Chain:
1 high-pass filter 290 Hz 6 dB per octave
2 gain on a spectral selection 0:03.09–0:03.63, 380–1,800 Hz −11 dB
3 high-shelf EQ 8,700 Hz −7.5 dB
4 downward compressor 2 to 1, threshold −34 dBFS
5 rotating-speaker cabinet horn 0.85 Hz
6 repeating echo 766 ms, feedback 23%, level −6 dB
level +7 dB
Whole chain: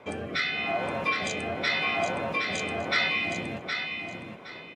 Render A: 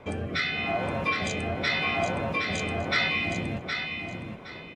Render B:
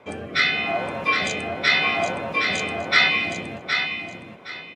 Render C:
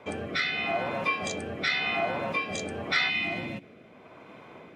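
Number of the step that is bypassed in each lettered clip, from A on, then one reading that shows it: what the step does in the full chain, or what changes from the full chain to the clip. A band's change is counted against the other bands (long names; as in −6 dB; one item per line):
1, 125 Hz band +7.0 dB
4, average gain reduction 3.0 dB
6, change in momentary loudness spread +1 LU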